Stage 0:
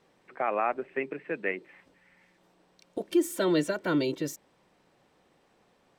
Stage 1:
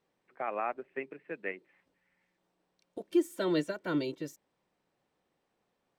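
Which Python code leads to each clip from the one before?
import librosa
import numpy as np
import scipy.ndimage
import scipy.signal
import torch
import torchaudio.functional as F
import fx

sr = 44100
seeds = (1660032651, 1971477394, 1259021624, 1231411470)

y = fx.upward_expand(x, sr, threshold_db=-42.0, expansion=1.5)
y = y * librosa.db_to_amplitude(-2.0)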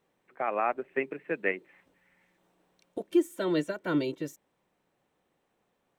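y = fx.peak_eq(x, sr, hz=4800.0, db=-6.0, octaves=0.45)
y = fx.rider(y, sr, range_db=4, speed_s=0.5)
y = y * librosa.db_to_amplitude(4.5)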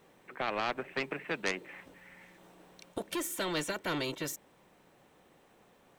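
y = 10.0 ** (-19.0 / 20.0) * np.tanh(x / 10.0 ** (-19.0 / 20.0))
y = fx.spectral_comp(y, sr, ratio=2.0)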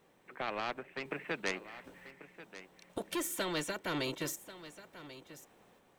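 y = fx.tremolo_random(x, sr, seeds[0], hz=3.8, depth_pct=55)
y = y + 10.0 ** (-15.0 / 20.0) * np.pad(y, (int(1088 * sr / 1000.0), 0))[:len(y)]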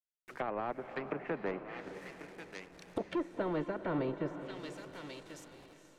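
y = fx.delta_hold(x, sr, step_db=-55.5)
y = fx.env_lowpass_down(y, sr, base_hz=1000.0, full_db=-36.0)
y = fx.echo_diffused(y, sr, ms=468, feedback_pct=44, wet_db=-11.0)
y = y * librosa.db_to_amplitude(3.0)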